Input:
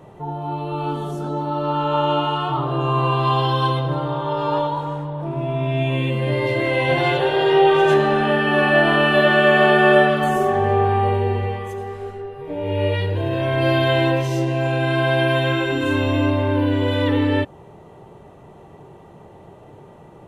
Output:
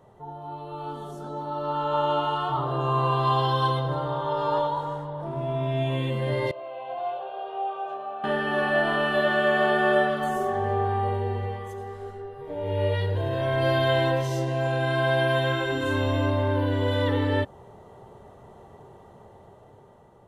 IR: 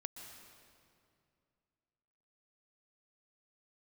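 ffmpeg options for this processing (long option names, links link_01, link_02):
-filter_complex "[0:a]equalizer=frequency=160:width_type=o:width=0.33:gain=-8,equalizer=frequency=315:width_type=o:width=0.33:gain=-8,equalizer=frequency=2500:width_type=o:width=0.33:gain=-10,dynaudnorm=framelen=660:gausssize=5:maxgain=7.5dB,asettb=1/sr,asplit=3[link_01][link_02][link_03];[link_01]atrim=end=6.514[link_04];[link_02]atrim=start=6.51:end=8.24,asetpts=PTS-STARTPTS,afade=type=in:duration=0.004:curve=qsin,afade=type=out:start_time=1.726:duration=0.004:curve=qsin,asplit=3[link_05][link_06][link_07];[link_05]bandpass=frequency=730:width_type=q:width=8,volume=0dB[link_08];[link_06]bandpass=frequency=1090:width_type=q:width=8,volume=-6dB[link_09];[link_07]bandpass=frequency=2440:width_type=q:width=8,volume=-9dB[link_10];[link_08][link_09][link_10]amix=inputs=3:normalize=0[link_11];[link_03]atrim=start=8.236[link_12];[link_04][link_11]acrossfade=duration=0.004:curve1=hsin:curve2=qsin[link_13];[link_13][link_12]acrossfade=duration=0.004:curve1=qsin:curve2=hsin,volume=-9dB"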